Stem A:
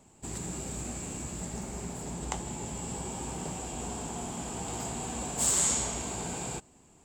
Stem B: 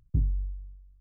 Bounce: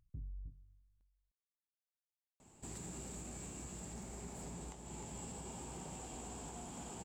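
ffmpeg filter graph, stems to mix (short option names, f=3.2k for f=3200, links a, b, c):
-filter_complex "[0:a]alimiter=level_in=1.5dB:limit=-24dB:level=0:latency=1:release=418,volume=-1.5dB,asoftclip=type=tanh:threshold=-25dB,adelay=2400,volume=-4.5dB,asplit=2[a][b];[b]volume=-8dB[c];[1:a]volume=-12.5dB,asplit=2[d][e];[e]volume=-15dB[f];[c][f]amix=inputs=2:normalize=0,aecho=0:1:306:1[g];[a][d][g]amix=inputs=3:normalize=0,alimiter=level_in=14.5dB:limit=-24dB:level=0:latency=1:release=440,volume=-14.5dB"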